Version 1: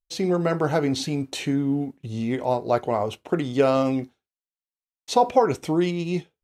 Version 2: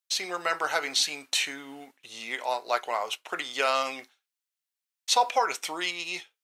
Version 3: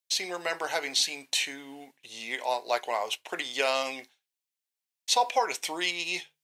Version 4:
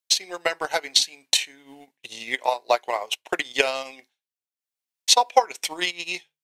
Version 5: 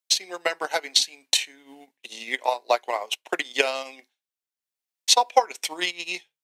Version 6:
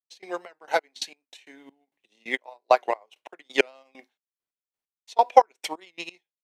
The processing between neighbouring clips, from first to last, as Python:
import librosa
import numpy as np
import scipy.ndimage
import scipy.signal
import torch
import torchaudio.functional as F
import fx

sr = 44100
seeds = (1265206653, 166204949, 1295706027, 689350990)

y1 = scipy.signal.sosfilt(scipy.signal.butter(2, 1400.0, 'highpass', fs=sr, output='sos'), x)
y1 = y1 * 10.0 ** (6.5 / 20.0)
y2 = fx.peak_eq(y1, sr, hz=1300.0, db=-11.0, octaves=0.38)
y2 = fx.hum_notches(y2, sr, base_hz=50, count=3)
y2 = fx.rider(y2, sr, range_db=10, speed_s=2.0)
y3 = fx.transient(y2, sr, attack_db=12, sustain_db=-9)
y3 = y3 * 10.0 ** (-1.0 / 20.0)
y4 = scipy.signal.sosfilt(scipy.signal.butter(4, 180.0, 'highpass', fs=sr, output='sos'), y3)
y4 = y4 * 10.0 ** (-1.0 / 20.0)
y5 = fx.high_shelf(y4, sr, hz=2600.0, db=-12.0)
y5 = fx.step_gate(y5, sr, bpm=133, pattern='..xx..x..x.', floor_db=-24.0, edge_ms=4.5)
y5 = fx.record_warp(y5, sr, rpm=78.0, depth_cents=100.0)
y5 = y5 * 10.0 ** (4.5 / 20.0)